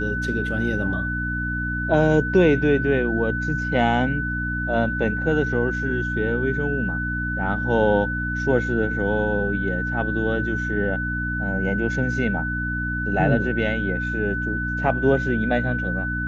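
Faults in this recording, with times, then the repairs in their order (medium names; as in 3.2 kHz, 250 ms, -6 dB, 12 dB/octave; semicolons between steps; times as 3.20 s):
hum 60 Hz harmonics 5 -28 dBFS
whine 1.5 kHz -26 dBFS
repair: de-hum 60 Hz, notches 5; band-stop 1.5 kHz, Q 30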